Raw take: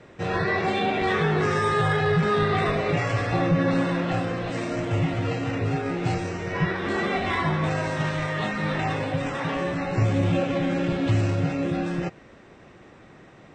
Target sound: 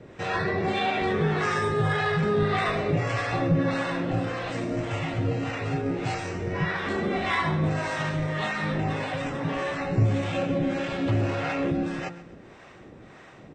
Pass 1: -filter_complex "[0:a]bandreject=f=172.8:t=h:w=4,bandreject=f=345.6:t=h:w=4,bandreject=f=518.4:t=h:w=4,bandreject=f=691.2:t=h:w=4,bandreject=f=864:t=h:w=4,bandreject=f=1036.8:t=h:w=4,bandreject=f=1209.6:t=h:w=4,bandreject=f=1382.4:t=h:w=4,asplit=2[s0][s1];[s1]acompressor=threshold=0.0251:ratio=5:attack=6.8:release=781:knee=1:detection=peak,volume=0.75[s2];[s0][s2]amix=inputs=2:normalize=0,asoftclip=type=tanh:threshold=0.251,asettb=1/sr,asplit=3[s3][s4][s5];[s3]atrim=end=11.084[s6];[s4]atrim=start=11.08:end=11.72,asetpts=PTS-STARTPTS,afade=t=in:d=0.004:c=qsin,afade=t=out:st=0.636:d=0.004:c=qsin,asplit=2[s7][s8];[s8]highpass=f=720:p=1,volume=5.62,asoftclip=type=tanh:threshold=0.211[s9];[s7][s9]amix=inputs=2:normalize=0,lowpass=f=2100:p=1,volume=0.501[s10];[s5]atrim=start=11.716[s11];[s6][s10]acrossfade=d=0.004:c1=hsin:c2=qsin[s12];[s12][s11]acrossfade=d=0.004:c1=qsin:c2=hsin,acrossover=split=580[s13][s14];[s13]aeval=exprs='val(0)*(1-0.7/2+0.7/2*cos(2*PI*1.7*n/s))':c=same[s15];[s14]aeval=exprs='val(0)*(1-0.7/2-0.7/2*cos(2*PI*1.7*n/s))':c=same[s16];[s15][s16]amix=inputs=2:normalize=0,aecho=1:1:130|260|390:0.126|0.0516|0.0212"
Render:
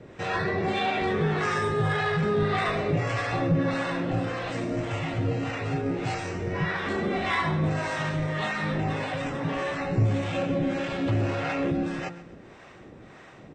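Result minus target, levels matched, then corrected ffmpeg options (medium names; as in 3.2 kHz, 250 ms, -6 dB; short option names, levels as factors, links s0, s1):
saturation: distortion +21 dB
-filter_complex "[0:a]bandreject=f=172.8:t=h:w=4,bandreject=f=345.6:t=h:w=4,bandreject=f=518.4:t=h:w=4,bandreject=f=691.2:t=h:w=4,bandreject=f=864:t=h:w=4,bandreject=f=1036.8:t=h:w=4,bandreject=f=1209.6:t=h:w=4,bandreject=f=1382.4:t=h:w=4,asplit=2[s0][s1];[s1]acompressor=threshold=0.0251:ratio=5:attack=6.8:release=781:knee=1:detection=peak,volume=0.75[s2];[s0][s2]amix=inputs=2:normalize=0,asoftclip=type=tanh:threshold=0.944,asettb=1/sr,asplit=3[s3][s4][s5];[s3]atrim=end=11.084[s6];[s4]atrim=start=11.08:end=11.72,asetpts=PTS-STARTPTS,afade=t=in:d=0.004:c=qsin,afade=t=out:st=0.636:d=0.004:c=qsin,asplit=2[s7][s8];[s8]highpass=f=720:p=1,volume=5.62,asoftclip=type=tanh:threshold=0.211[s9];[s7][s9]amix=inputs=2:normalize=0,lowpass=f=2100:p=1,volume=0.501[s10];[s5]atrim=start=11.716[s11];[s6][s10]acrossfade=d=0.004:c1=hsin:c2=qsin[s12];[s12][s11]acrossfade=d=0.004:c1=qsin:c2=hsin,acrossover=split=580[s13][s14];[s13]aeval=exprs='val(0)*(1-0.7/2+0.7/2*cos(2*PI*1.7*n/s))':c=same[s15];[s14]aeval=exprs='val(0)*(1-0.7/2-0.7/2*cos(2*PI*1.7*n/s))':c=same[s16];[s15][s16]amix=inputs=2:normalize=0,aecho=1:1:130|260|390:0.126|0.0516|0.0212"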